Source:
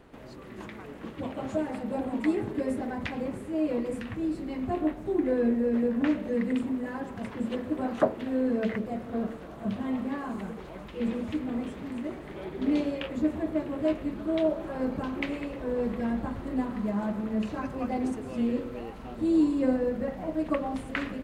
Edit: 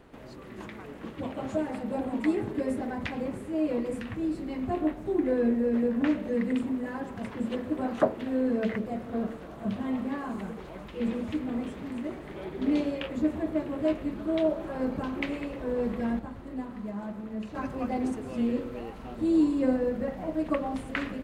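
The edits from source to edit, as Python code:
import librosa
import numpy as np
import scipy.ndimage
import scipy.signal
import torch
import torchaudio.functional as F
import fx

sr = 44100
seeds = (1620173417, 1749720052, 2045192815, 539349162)

y = fx.edit(x, sr, fx.clip_gain(start_s=16.19, length_s=1.36, db=-6.5), tone=tone)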